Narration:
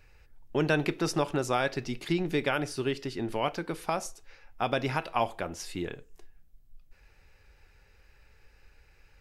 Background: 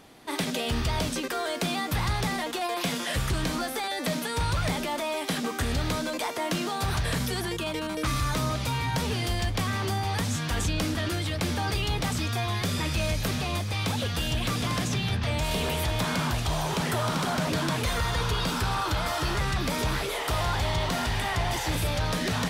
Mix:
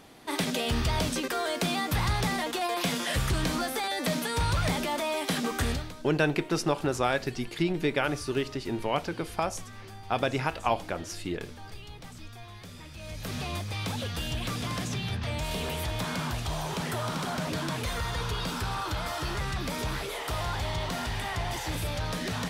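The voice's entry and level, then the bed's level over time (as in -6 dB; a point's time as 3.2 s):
5.50 s, +1.0 dB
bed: 5.7 s 0 dB
5.95 s -17.5 dB
12.94 s -17.5 dB
13.38 s -4.5 dB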